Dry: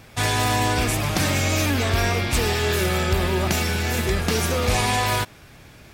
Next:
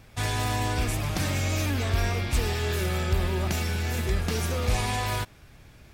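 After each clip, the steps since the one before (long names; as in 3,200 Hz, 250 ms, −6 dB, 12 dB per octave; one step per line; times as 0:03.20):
low-shelf EQ 82 Hz +11 dB
level −8 dB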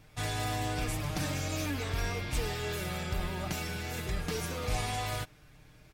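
comb filter 6.6 ms, depth 54%
level −6.5 dB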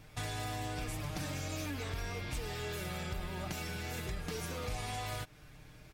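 downward compressor 3 to 1, threshold −40 dBFS, peak gain reduction 10.5 dB
level +2 dB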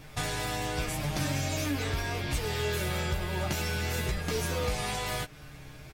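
double-tracking delay 14 ms −4 dB
level +7 dB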